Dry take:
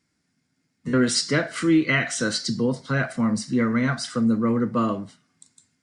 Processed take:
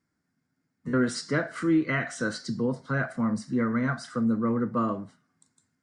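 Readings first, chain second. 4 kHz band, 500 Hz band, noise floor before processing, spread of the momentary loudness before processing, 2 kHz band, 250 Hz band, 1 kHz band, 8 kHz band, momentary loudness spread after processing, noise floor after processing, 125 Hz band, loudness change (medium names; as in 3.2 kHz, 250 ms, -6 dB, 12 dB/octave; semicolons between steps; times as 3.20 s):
-12.5 dB, -4.0 dB, -74 dBFS, 5 LU, -5.5 dB, -4.5 dB, -3.0 dB, -12.0 dB, 6 LU, -79 dBFS, -4.5 dB, -5.0 dB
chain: resonant high shelf 2 kHz -7 dB, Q 1.5; trim -4.5 dB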